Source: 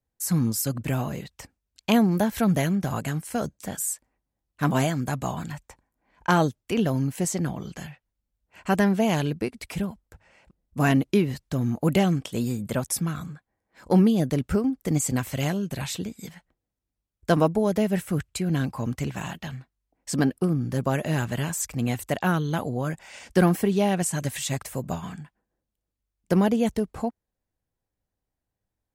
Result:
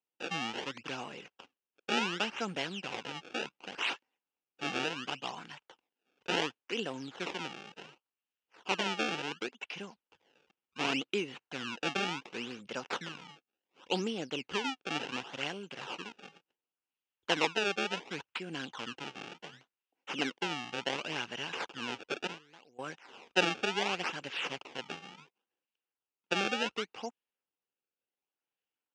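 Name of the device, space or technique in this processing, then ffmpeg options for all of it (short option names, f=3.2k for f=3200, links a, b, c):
circuit-bent sampling toy: -filter_complex "[0:a]asettb=1/sr,asplit=3[a][b][c];[a]atrim=end=22.274[d];[b]atrim=start=22.27:end=22.79,asetpts=PTS-STARTPTS,afade=t=in:d=0.004:c=qsin,afade=t=out:st=0.516:d=0.004:c=qsin,agate=range=-20dB:threshold=-20dB:ratio=16:detection=peak[e];[c]atrim=start=22.786[f];[d][e]acrossfade=d=0.004:c1=hsin:c2=qsin[g];[g][f]acrossfade=d=0.004:c1=qsin:c2=hsin,acrusher=samples=25:mix=1:aa=0.000001:lfo=1:lforange=40:lforate=0.69,highpass=490,equalizer=f=630:t=q:w=4:g=-10,equalizer=f=1.1k:t=q:w=4:g=-4,equalizer=f=1.9k:t=q:w=4:g=-4,equalizer=f=2.8k:t=q:w=4:g=9,equalizer=f=4.3k:t=q:w=4:g=-5,lowpass=f=5.8k:w=0.5412,lowpass=f=5.8k:w=1.3066,volume=-4dB"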